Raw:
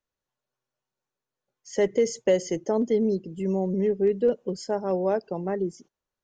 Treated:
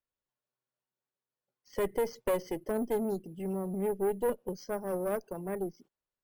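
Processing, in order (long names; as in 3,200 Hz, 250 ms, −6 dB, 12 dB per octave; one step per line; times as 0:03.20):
tube saturation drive 20 dB, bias 0.7
bad sample-rate conversion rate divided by 4×, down filtered, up hold
level −3 dB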